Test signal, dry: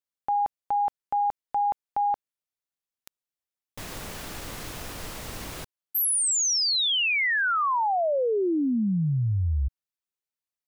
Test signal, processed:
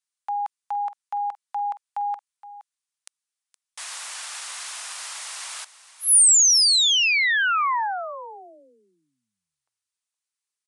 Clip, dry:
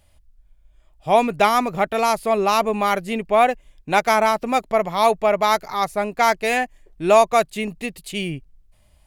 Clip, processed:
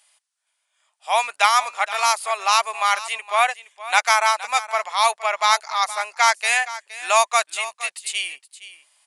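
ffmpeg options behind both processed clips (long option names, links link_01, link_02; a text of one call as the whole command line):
ffmpeg -i in.wav -af "highpass=frequency=890:width=0.5412,highpass=frequency=890:width=1.3066,crystalizer=i=1.5:c=0,aecho=1:1:468:0.168,aresample=22050,aresample=44100,volume=2.5dB" out.wav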